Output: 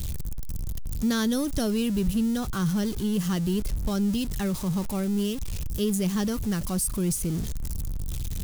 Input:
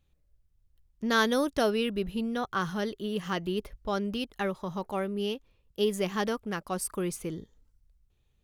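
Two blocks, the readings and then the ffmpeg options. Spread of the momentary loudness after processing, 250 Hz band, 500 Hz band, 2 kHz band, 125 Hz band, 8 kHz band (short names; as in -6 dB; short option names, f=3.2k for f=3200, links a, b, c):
9 LU, +7.5 dB, -2.5 dB, -6.0 dB, +11.5 dB, +9.0 dB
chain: -filter_complex "[0:a]aeval=exprs='val(0)+0.5*0.02*sgn(val(0))':c=same,bass=f=250:g=15,treble=f=4k:g=15,acrossover=split=340[a][b];[b]acompressor=threshold=-33dB:ratio=1.5[c];[a][c]amix=inputs=2:normalize=0,volume=-3.5dB"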